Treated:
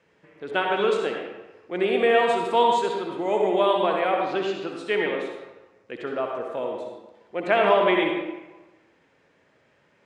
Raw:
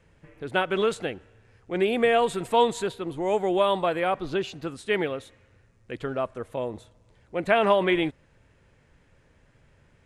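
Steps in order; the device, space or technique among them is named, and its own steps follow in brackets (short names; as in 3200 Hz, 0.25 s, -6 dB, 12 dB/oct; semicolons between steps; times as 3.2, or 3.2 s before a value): supermarket ceiling speaker (BPF 250–6000 Hz; reverb RT60 1.1 s, pre-delay 56 ms, DRR 1 dB)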